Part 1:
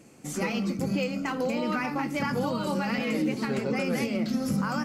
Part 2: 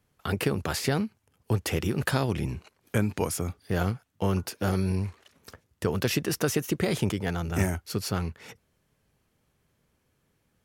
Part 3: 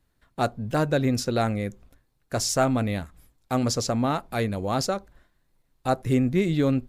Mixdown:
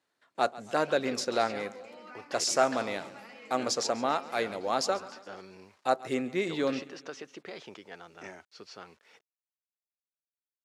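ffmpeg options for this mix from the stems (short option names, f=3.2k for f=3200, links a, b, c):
-filter_complex "[0:a]adelay=350,volume=-17.5dB,asplit=2[a][b];[b]volume=-14dB[c];[1:a]lowpass=f=5.9k:w=0.5412,lowpass=f=5.9k:w=1.3066,acrusher=bits=8:mix=0:aa=0.000001,adelay=650,volume=-12dB[d];[2:a]volume=-1dB,asplit=2[e][f];[f]volume=-18.5dB[g];[c][g]amix=inputs=2:normalize=0,aecho=0:1:138|276|414|552|690|828|966:1|0.5|0.25|0.125|0.0625|0.0312|0.0156[h];[a][d][e][h]amix=inputs=4:normalize=0,highpass=430,lowpass=7.6k"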